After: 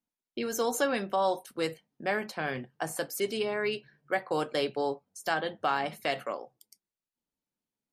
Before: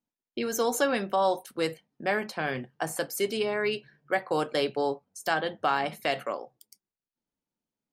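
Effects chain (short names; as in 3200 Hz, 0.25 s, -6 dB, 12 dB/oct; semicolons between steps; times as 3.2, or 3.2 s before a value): gain -2 dB; MP3 56 kbps 32000 Hz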